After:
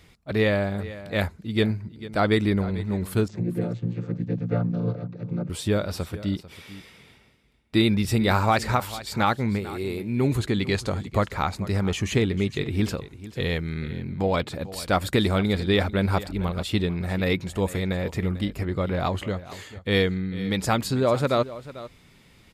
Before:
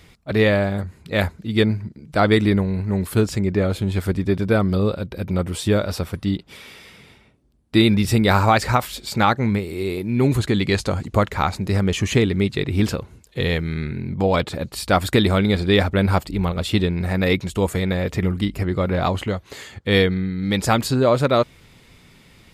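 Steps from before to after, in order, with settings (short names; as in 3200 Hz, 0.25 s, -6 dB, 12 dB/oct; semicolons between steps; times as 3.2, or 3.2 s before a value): 3.28–5.5 chord vocoder major triad, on A#2; echo 0.445 s -16 dB; gain -5 dB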